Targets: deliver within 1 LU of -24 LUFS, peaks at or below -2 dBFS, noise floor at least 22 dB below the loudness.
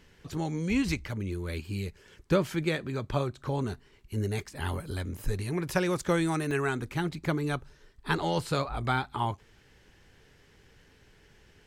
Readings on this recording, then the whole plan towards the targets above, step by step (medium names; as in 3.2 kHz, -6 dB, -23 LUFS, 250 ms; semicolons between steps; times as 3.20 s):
dropouts 1; longest dropout 2.3 ms; loudness -31.5 LUFS; peak level -11.0 dBFS; loudness target -24.0 LUFS
-> interpolate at 6.51 s, 2.3 ms; trim +7.5 dB